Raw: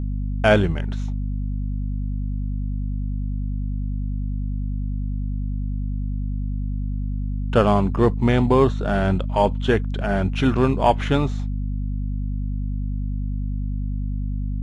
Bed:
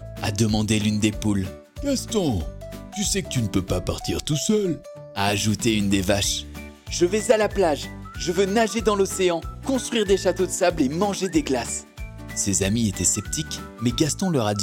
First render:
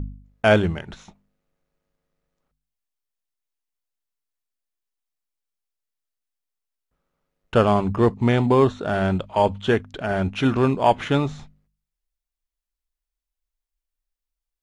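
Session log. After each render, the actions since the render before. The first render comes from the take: de-hum 50 Hz, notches 5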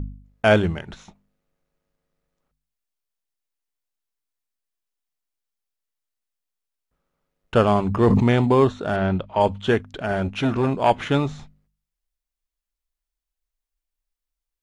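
7.89–8.45 sustainer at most 20 dB/s; 8.96–9.41 air absorption 140 m; 10.15–10.9 core saturation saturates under 630 Hz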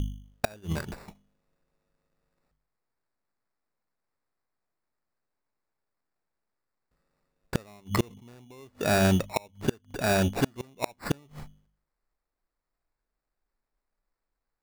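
sample-and-hold 14×; flipped gate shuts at -12 dBFS, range -33 dB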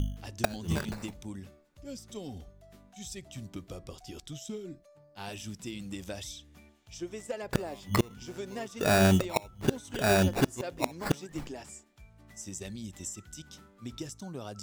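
add bed -19 dB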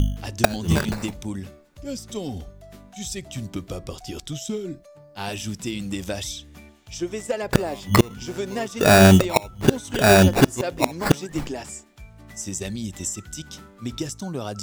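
gain +10.5 dB; limiter -1 dBFS, peak gain reduction 1.5 dB

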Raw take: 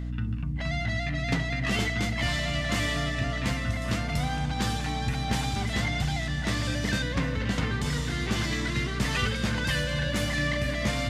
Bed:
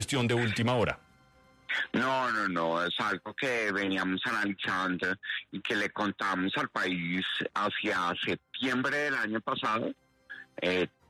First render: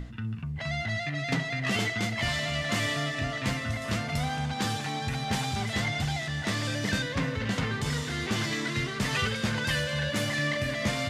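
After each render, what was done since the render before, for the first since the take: notches 60/120/180/240/300/360 Hz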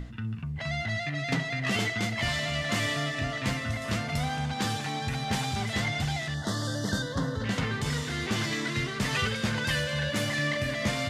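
6.34–7.44 Butterworth band-stop 2400 Hz, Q 1.3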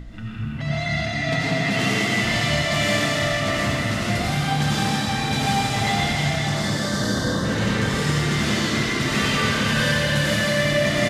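frequency-shifting echo 0.165 s, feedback 56%, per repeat +30 Hz, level -9 dB; digital reverb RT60 2.1 s, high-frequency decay 1×, pre-delay 50 ms, DRR -7 dB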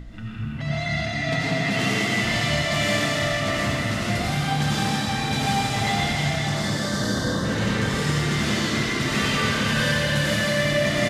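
gain -1.5 dB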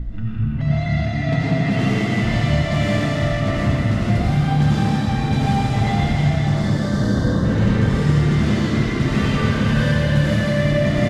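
tilt -3 dB/oct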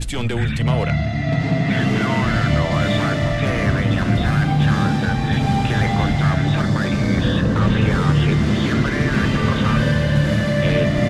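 add bed +3 dB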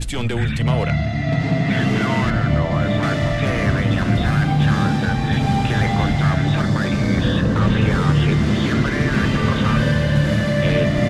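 2.3–3.03 high shelf 2400 Hz -10 dB

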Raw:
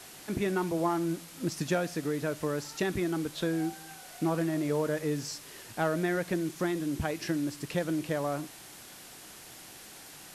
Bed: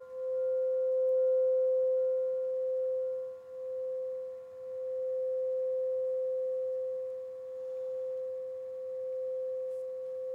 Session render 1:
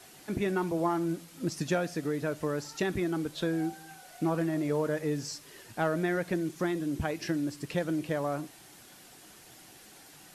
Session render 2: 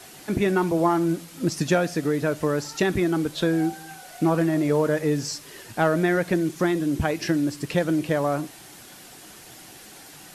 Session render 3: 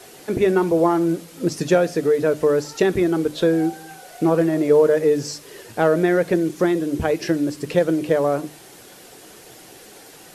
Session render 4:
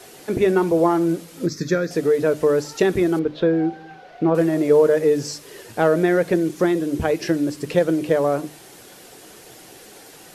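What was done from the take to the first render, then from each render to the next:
denoiser 6 dB, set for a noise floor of -49 dBFS
gain +8 dB
bell 460 Hz +9.5 dB 0.73 oct; notches 50/100/150/200/250/300 Hz
1.46–1.91 fixed phaser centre 2900 Hz, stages 6; 3.19–4.35 air absorption 260 m

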